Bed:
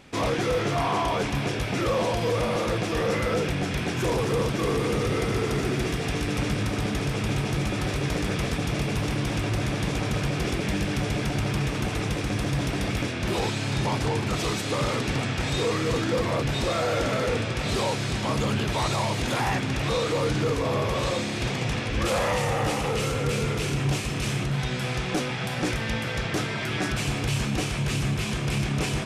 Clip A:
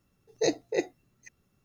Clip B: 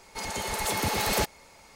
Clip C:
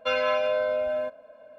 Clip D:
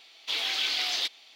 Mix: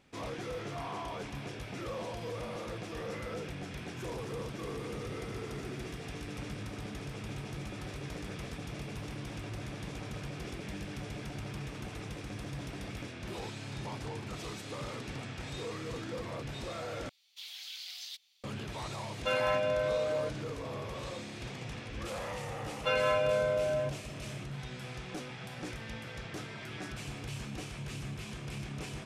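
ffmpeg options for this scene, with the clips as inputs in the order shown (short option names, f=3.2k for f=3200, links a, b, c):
-filter_complex "[3:a]asplit=2[a][b];[0:a]volume=-14.5dB[c];[4:a]aderivative[d];[c]asplit=2[e][f];[e]atrim=end=17.094[g];[d]atrim=end=1.35,asetpts=PTS-STARTPTS,volume=-10dB[h];[f]atrim=start=18.436[i];[a]atrim=end=1.58,asetpts=PTS-STARTPTS,volume=-5.5dB,afade=t=in:d=0.004:c=hsin,afade=t=out:st=1.576:d=0.004:c=hsin,adelay=19200[j];[b]atrim=end=1.58,asetpts=PTS-STARTPTS,volume=-4dB,afade=t=in:d=0.004:c=hsin,afade=t=out:st=1.576:d=0.004:c=hsin,adelay=22800[k];[g][h]acrossfade=d=0.004:c1=hsin:c2=hsin[l];[l][i]acrossfade=d=0.004:c1=hsin:c2=hsin[m];[m][j][k]amix=inputs=3:normalize=0"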